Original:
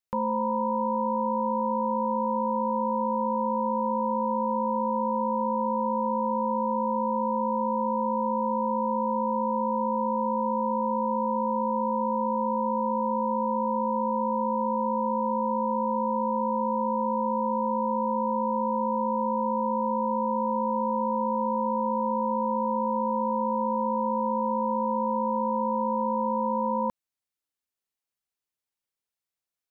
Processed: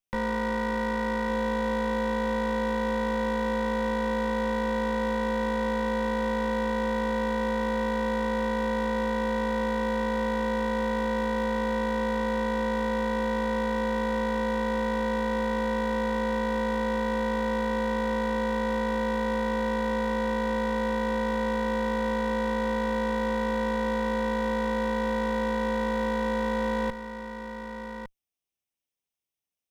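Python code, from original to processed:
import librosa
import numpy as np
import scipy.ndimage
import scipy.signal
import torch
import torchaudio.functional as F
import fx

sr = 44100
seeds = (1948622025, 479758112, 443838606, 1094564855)

p1 = fx.lower_of_two(x, sr, delay_ms=0.35)
y = p1 + fx.echo_single(p1, sr, ms=1158, db=-9.5, dry=0)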